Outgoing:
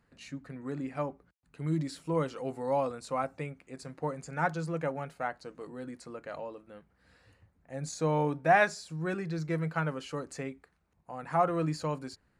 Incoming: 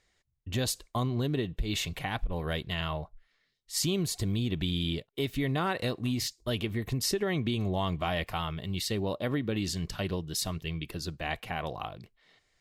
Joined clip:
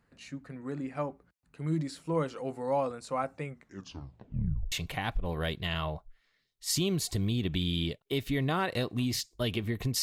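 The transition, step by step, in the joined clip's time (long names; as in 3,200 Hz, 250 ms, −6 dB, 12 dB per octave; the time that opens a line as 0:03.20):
outgoing
0:03.45: tape stop 1.27 s
0:04.72: continue with incoming from 0:01.79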